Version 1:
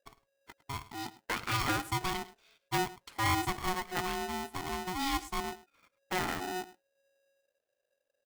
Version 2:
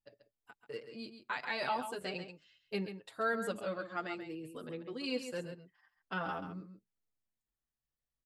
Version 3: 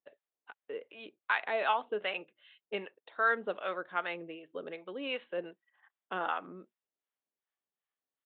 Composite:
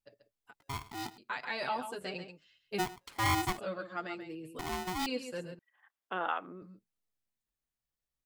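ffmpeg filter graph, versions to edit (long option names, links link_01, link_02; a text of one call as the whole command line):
ffmpeg -i take0.wav -i take1.wav -i take2.wav -filter_complex "[0:a]asplit=3[link_01][link_02][link_03];[1:a]asplit=5[link_04][link_05][link_06][link_07][link_08];[link_04]atrim=end=0.602[link_09];[link_01]atrim=start=0.598:end=1.182[link_10];[link_05]atrim=start=1.178:end=2.8[link_11];[link_02]atrim=start=2.78:end=3.59[link_12];[link_06]atrim=start=3.57:end=4.592[link_13];[link_03]atrim=start=4.588:end=5.062[link_14];[link_07]atrim=start=5.058:end=5.592[link_15];[2:a]atrim=start=5.588:end=6.622[link_16];[link_08]atrim=start=6.618[link_17];[link_09][link_10]acrossfade=duration=0.004:curve1=hsin:curve2=hsin[link_18];[link_18][link_11]acrossfade=duration=0.004:curve1=hsin:curve2=hsin[link_19];[link_19][link_12]acrossfade=duration=0.02:curve1=tri:curve2=tri[link_20];[link_20][link_13]acrossfade=duration=0.02:curve1=tri:curve2=tri[link_21];[link_21][link_14]acrossfade=duration=0.004:curve1=hsin:curve2=hsin[link_22];[link_22][link_15]acrossfade=duration=0.004:curve1=hsin:curve2=hsin[link_23];[link_23][link_16]acrossfade=duration=0.004:curve1=hsin:curve2=hsin[link_24];[link_24][link_17]acrossfade=duration=0.004:curve1=hsin:curve2=hsin" out.wav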